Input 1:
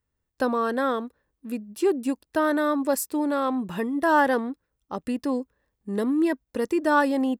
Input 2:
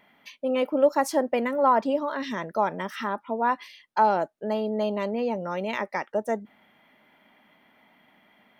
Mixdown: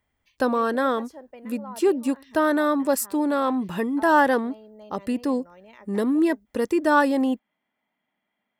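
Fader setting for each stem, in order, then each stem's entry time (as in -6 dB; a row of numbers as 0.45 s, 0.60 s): +2.0 dB, -19.5 dB; 0.00 s, 0.00 s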